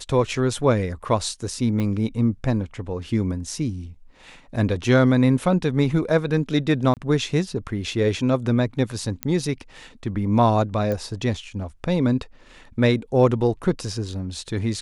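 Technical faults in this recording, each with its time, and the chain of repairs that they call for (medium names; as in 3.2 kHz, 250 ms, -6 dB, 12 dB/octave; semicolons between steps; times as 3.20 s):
1.80 s: pop -15 dBFS
6.94–6.97 s: dropout 28 ms
9.23 s: pop -8 dBFS
10.92 s: pop -15 dBFS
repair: de-click; interpolate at 6.94 s, 28 ms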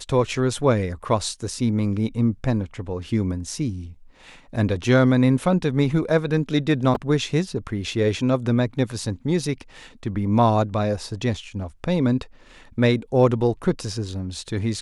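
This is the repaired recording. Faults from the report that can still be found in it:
1.80 s: pop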